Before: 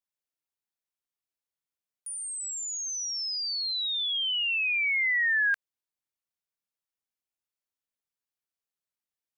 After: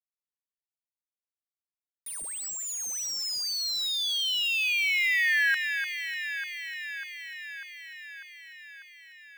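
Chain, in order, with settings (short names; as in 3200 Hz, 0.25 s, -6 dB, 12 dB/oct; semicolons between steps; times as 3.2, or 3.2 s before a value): sample gate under -36.5 dBFS; echo with dull and thin repeats by turns 0.298 s, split 2400 Hz, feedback 82%, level -6.5 dB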